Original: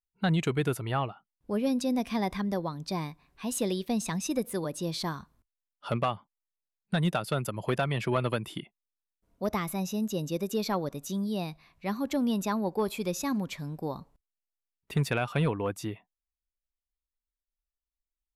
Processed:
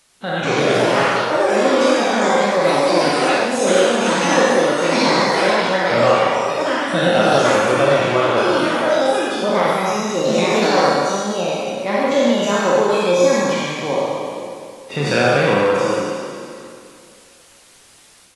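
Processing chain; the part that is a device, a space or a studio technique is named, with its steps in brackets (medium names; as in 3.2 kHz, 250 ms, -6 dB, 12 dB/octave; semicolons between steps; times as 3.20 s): spectral sustain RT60 2.20 s; high-pass 73 Hz 24 dB/octave; doubling 34 ms -7 dB; ever faster or slower copies 293 ms, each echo +7 st, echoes 3; filmed off a television (band-pass 220–6500 Hz; peaking EQ 540 Hz +8.5 dB 0.23 oct; reverberation RT60 0.55 s, pre-delay 40 ms, DRR 1 dB; white noise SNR 32 dB; level rider gain up to 8.5 dB; trim -1 dB; AAC 32 kbps 24 kHz)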